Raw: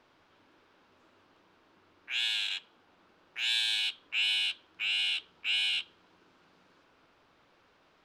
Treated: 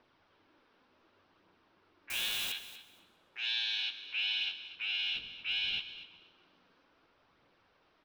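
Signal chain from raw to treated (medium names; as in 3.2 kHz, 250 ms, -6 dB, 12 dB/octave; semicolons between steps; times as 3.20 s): 5.14–5.78 s: wind noise 290 Hz -45 dBFS; steep low-pass 6 kHz 72 dB/octave; phaser 0.67 Hz, delay 4.5 ms, feedback 29%; 2.10–2.52 s: word length cut 6-bit, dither triangular; feedback delay 239 ms, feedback 18%, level -14 dB; modulated delay 129 ms, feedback 56%, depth 71 cents, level -18.5 dB; trim -5 dB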